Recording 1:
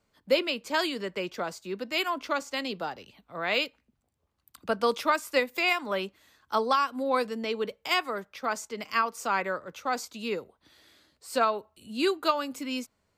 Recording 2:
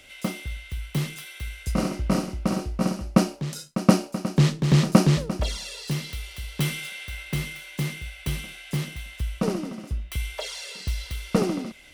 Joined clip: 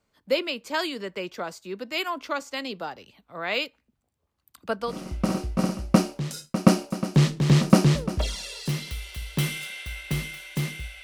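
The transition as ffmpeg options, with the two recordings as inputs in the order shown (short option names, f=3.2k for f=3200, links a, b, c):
-filter_complex "[0:a]apad=whole_dur=11.03,atrim=end=11.03,atrim=end=5.13,asetpts=PTS-STARTPTS[a];[1:a]atrim=start=1.99:end=8.25,asetpts=PTS-STARTPTS[b];[a][b]acrossfade=d=0.36:c1=qua:c2=qua"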